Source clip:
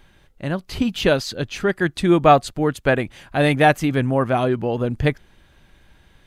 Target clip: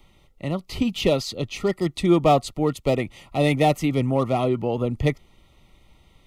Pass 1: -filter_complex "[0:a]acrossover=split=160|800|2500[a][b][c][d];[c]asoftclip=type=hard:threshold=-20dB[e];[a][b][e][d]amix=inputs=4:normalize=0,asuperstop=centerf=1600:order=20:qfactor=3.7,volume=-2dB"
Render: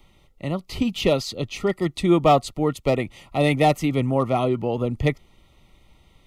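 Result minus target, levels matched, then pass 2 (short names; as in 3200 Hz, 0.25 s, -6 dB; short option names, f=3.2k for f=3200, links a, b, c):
hard clip: distortion -5 dB
-filter_complex "[0:a]acrossover=split=160|800|2500[a][b][c][d];[c]asoftclip=type=hard:threshold=-27.5dB[e];[a][b][e][d]amix=inputs=4:normalize=0,asuperstop=centerf=1600:order=20:qfactor=3.7,volume=-2dB"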